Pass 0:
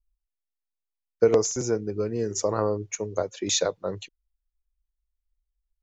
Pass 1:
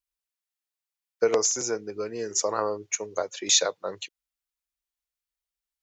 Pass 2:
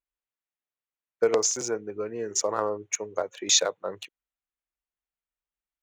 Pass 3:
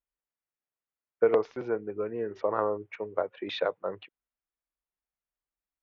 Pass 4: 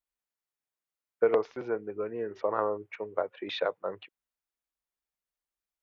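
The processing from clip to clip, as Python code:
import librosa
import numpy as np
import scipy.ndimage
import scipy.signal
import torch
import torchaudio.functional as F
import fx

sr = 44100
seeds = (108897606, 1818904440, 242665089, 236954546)

y1 = fx.highpass(x, sr, hz=1100.0, slope=6)
y1 = y1 * 10.0 ** (5.0 / 20.0)
y2 = fx.wiener(y1, sr, points=9)
y3 = scipy.signal.sosfilt(scipy.signal.bessel(8, 1900.0, 'lowpass', norm='mag', fs=sr, output='sos'), y2)
y4 = fx.low_shelf(y3, sr, hz=330.0, db=-4.0)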